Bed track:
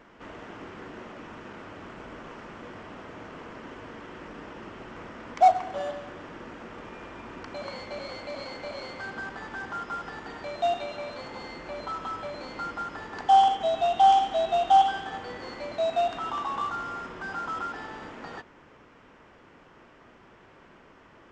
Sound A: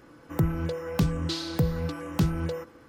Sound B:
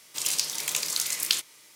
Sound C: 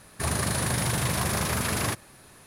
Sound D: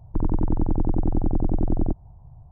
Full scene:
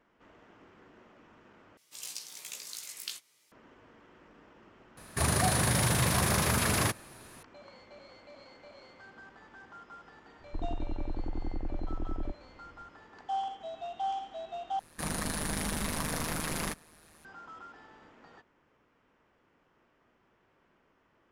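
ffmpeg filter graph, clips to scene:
-filter_complex "[3:a]asplit=2[a][b];[0:a]volume=-15.5dB[c];[2:a]asplit=2[d][e];[e]adelay=17,volume=-3.5dB[f];[d][f]amix=inputs=2:normalize=0[g];[4:a]equalizer=f=150:w=1.5:g=-13[h];[b]aeval=exprs='val(0)*sin(2*PI*78*n/s)':c=same[i];[c]asplit=3[j][k][l];[j]atrim=end=1.774[m];[g]atrim=end=1.75,asetpts=PTS-STARTPTS,volume=-16dB[n];[k]atrim=start=3.516:end=14.794[o];[i]atrim=end=2.46,asetpts=PTS-STARTPTS,volume=-4dB[p];[l]atrim=start=17.246[q];[a]atrim=end=2.46,asetpts=PTS-STARTPTS,volume=-0.5dB,afade=t=in:d=0.004:c=hsin,afade=t=out:st=2.456:d=0.004:c=hsin,adelay=219177S[r];[h]atrim=end=2.51,asetpts=PTS-STARTPTS,volume=-11.5dB,afade=t=in:d=0.004:c=hsin,afade=t=out:st=2.506:d=0.004:c=hsin,adelay=10390[s];[m][n]acrossfade=d=0.004:c1=hsin:c2=hsin[t];[t][o]acrossfade=d=0.004:c1=hsin:c2=hsin[u];[u][p]acrossfade=d=0.004:c1=hsin:c2=hsin[v];[v][q]acrossfade=d=0.004:c1=hsin:c2=hsin[w];[w][r][s]amix=inputs=3:normalize=0"

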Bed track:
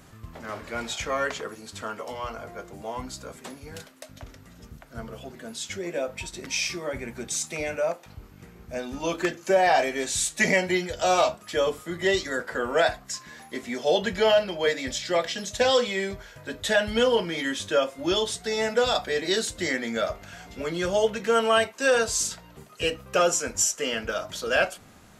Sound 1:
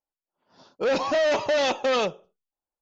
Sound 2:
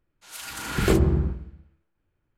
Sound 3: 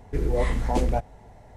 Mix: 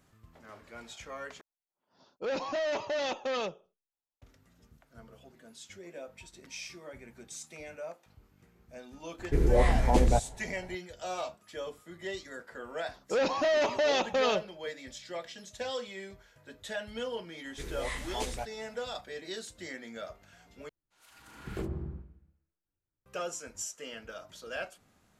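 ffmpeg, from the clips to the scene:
-filter_complex "[1:a]asplit=2[a][b];[3:a]asplit=2[c][d];[0:a]volume=-15dB[e];[d]tiltshelf=f=970:g=-9.5[f];[2:a]highshelf=f=2.6k:g=-7.5[g];[e]asplit=3[h][i][j];[h]atrim=end=1.414[k];[a]atrim=end=2.81,asetpts=PTS-STARTPTS,volume=-9.5dB[l];[i]atrim=start=4.216:end=20.694[m];[g]atrim=end=2.37,asetpts=PTS-STARTPTS,volume=-16.5dB[n];[j]atrim=start=23.056[o];[c]atrim=end=1.56,asetpts=PTS-STARTPTS,afade=t=in:d=0.004:c=hsin,afade=t=out:st=1.556:d=0.004:c=hsin,adelay=9190[p];[b]atrim=end=2.81,asetpts=PTS-STARTPTS,volume=-4.5dB,afade=t=in:d=0.004:c=hsin,afade=t=out:st=2.806:d=0.004:c=hsin,adelay=12300[q];[f]atrim=end=1.56,asetpts=PTS-STARTPTS,volume=-8dB,afade=t=in:d=0.004:c=hsin,afade=t=out:st=1.556:d=0.004:c=hsin,adelay=17450[r];[k][l]acrossfade=d=0.004:c1=hsin:c2=hsin[s];[s][m]acrossfade=d=0.004:c1=hsin:c2=hsin[t];[t][n]acrossfade=d=0.004:c1=hsin:c2=hsin[u];[u][o]acrossfade=d=0.004:c1=hsin:c2=hsin[v];[v][p][q][r]amix=inputs=4:normalize=0"

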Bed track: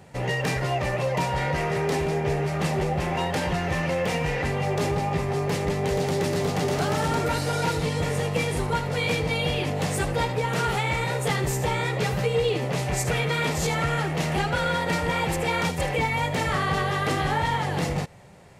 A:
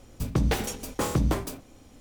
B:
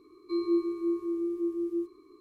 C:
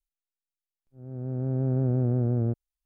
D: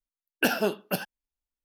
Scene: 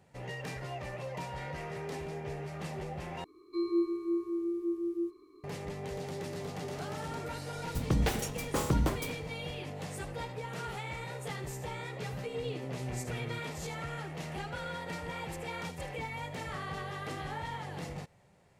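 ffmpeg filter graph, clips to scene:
-filter_complex "[0:a]volume=-14.5dB,asplit=2[a][b];[a]atrim=end=3.244[c];[2:a]atrim=end=2.2,asetpts=PTS-STARTPTS,volume=-2.5dB[d];[b]atrim=start=5.436[e];[1:a]atrim=end=2,asetpts=PTS-STARTPTS,volume=-4dB,afade=t=in:d=0.004:c=hsin,afade=t=out:st=1.996:d=0.004:c=hsin,adelay=7550[f];[3:a]atrim=end=2.85,asetpts=PTS-STARTPTS,volume=-15.5dB,afade=t=in:d=0.004:c=hsin,afade=t=out:st=2.846:d=0.004:c=hsin,adelay=10860[g];[c][d]acrossfade=d=0.004:c1=hsin:c2=hsin[h];[h][e]acrossfade=d=0.004:c1=hsin:c2=hsin[i];[i][f][g]amix=inputs=3:normalize=0"

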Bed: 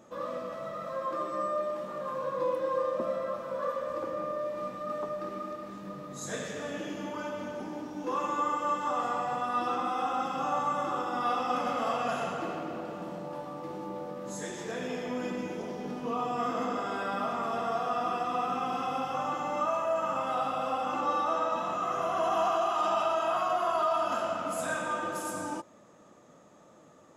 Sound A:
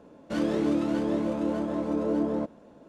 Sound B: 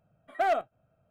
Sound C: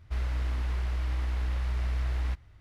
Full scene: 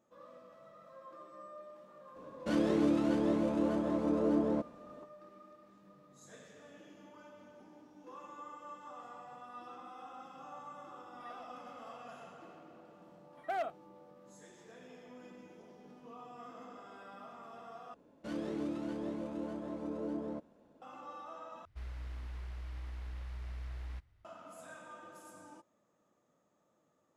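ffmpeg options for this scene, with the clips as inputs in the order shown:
-filter_complex "[1:a]asplit=2[a][b];[2:a]asplit=2[c][d];[0:a]volume=-19dB[e];[c]acompressor=threshold=-44dB:ratio=6:attack=3.2:release=140:knee=1:detection=peak[f];[d]highpass=46[g];[e]asplit=3[h][i][j];[h]atrim=end=17.944[k];[b]atrim=end=2.88,asetpts=PTS-STARTPTS,volume=-12dB[l];[i]atrim=start=20.816:end=21.654[m];[3:a]atrim=end=2.6,asetpts=PTS-STARTPTS,volume=-13.5dB[n];[j]atrim=start=24.246[o];[a]atrim=end=2.88,asetpts=PTS-STARTPTS,volume=-3.5dB,afade=t=in:d=0.004:c=hsin,afade=t=out:st=2.876:d=0.004:c=hsin,adelay=2160[p];[f]atrim=end=1.1,asetpts=PTS-STARTPTS,volume=-10dB,afade=t=in:d=0.004:c=hsin,afade=t=out:st=1.096:d=0.004:c=hsin,adelay=10910[q];[g]atrim=end=1.1,asetpts=PTS-STARTPTS,volume=-10dB,afade=t=in:d=0.004:c=hsin,afade=t=out:st=1.096:d=0.004:c=hsin,adelay=13090[r];[k][l]acrossfade=d=0.004:c1=hsin:c2=hsin[s];[s][m]acrossfade=d=0.004:c1=hsin:c2=hsin[t];[t][n]acrossfade=d=0.004:c1=hsin:c2=hsin[u];[u][o]acrossfade=d=0.004:c1=hsin:c2=hsin[v];[v][p][q][r]amix=inputs=4:normalize=0"

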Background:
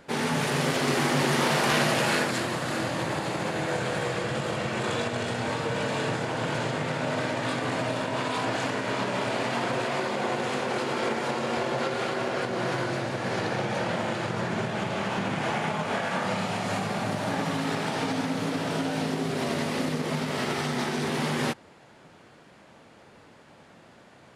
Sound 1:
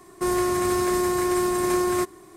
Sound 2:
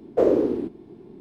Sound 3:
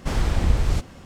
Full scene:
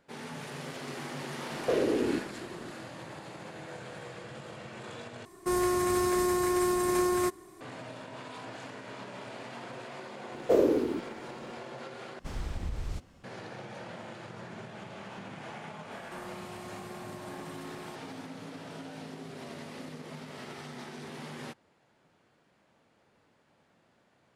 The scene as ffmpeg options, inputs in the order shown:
-filter_complex "[2:a]asplit=2[a][b];[1:a]asplit=2[c][d];[0:a]volume=-15dB[e];[a]acompressor=threshold=-23dB:ratio=6:attack=3.2:release=140:knee=1:detection=peak[f];[b]crystalizer=i=3:c=0[g];[3:a]alimiter=limit=-11dB:level=0:latency=1:release=87[h];[d]acompressor=threshold=-37dB:ratio=6:attack=3.2:release=140:knee=1:detection=peak[i];[e]asplit=3[j][k][l];[j]atrim=end=5.254[m];[c]atrim=end=2.36,asetpts=PTS-STARTPTS,volume=-4.5dB[n];[k]atrim=start=7.606:end=12.194[o];[h]atrim=end=1.05,asetpts=PTS-STARTPTS,volume=-14dB[p];[l]atrim=start=13.236[q];[f]atrim=end=1.2,asetpts=PTS-STARTPTS,volume=-0.5dB,afade=t=in:d=0.004:c=hsin,afade=t=out:st=1.196:d=0.004:c=hsin,adelay=1510[r];[g]atrim=end=1.2,asetpts=PTS-STARTPTS,volume=-5dB,afade=t=in:d=0.004:c=hsin,afade=t=out:st=1.196:d=0.004:c=hsin,adelay=10320[s];[i]atrim=end=2.36,asetpts=PTS-STARTPTS,volume=-8.5dB,afade=t=in:d=0.004:c=hsin,afade=t=out:st=2.356:d=0.004:c=hsin,adelay=15910[t];[m][n]acrossfade=d=0.004:c1=hsin:c2=hsin[u];[u][o]acrossfade=d=0.004:c1=hsin:c2=hsin[v];[v][p]acrossfade=d=0.004:c1=hsin:c2=hsin[w];[w][q]acrossfade=d=0.004:c1=hsin:c2=hsin[x];[x][r][s][t]amix=inputs=4:normalize=0"

